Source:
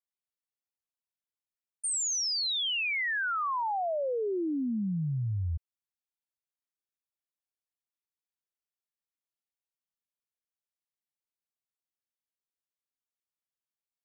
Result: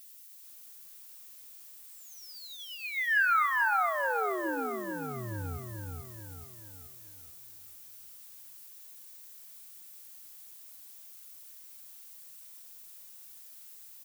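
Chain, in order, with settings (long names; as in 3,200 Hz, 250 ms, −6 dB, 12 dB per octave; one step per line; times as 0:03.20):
high-pass filter 71 Hz 24 dB per octave
spectral tilt +2.5 dB per octave
comb filter 2.4 ms, depth 34%
dynamic equaliser 200 Hz, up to −6 dB, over −54 dBFS, Q 1.6
in parallel at 0 dB: downward compressor 20 to 1, threshold −35 dBFS, peak gain reduction 15.5 dB
on the sum: two-band tremolo in antiphase 1.1 Hz, depth 50%, crossover 620 Hz
flanger 0.79 Hz, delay 6.8 ms, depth 6.4 ms, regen −71%
soft clipping −23 dBFS, distortion −21 dB
low-pass with resonance 1,500 Hz, resonance Q 2.4
background noise violet −52 dBFS
on a send: repeating echo 159 ms, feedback 44%, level −22 dB
on the sum: feedback echo at a low word length 433 ms, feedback 55%, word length 10 bits, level −3 dB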